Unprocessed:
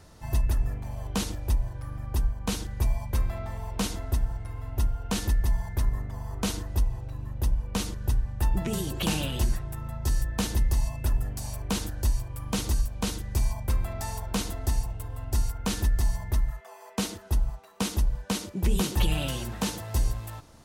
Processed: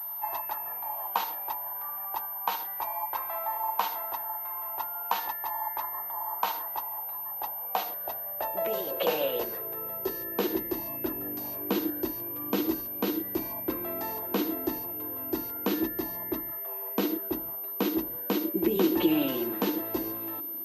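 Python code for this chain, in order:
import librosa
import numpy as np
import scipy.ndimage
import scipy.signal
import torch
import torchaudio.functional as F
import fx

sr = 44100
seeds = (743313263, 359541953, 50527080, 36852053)

y = fx.filter_sweep_highpass(x, sr, from_hz=880.0, to_hz=320.0, start_s=7.17, end_s=10.89, q=6.2)
y = fx.high_shelf(y, sr, hz=4800.0, db=-9.5)
y = fx.pwm(y, sr, carrier_hz=13000.0)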